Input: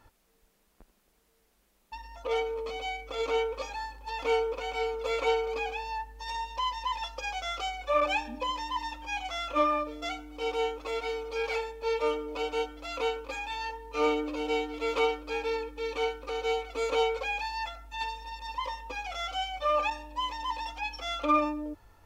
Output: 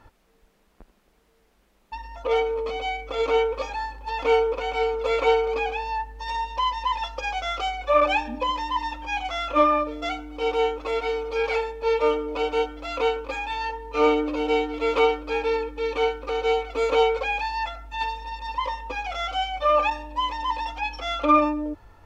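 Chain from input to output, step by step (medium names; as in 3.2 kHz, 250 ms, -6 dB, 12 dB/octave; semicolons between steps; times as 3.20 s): treble shelf 5.2 kHz -12 dB; trim +7.5 dB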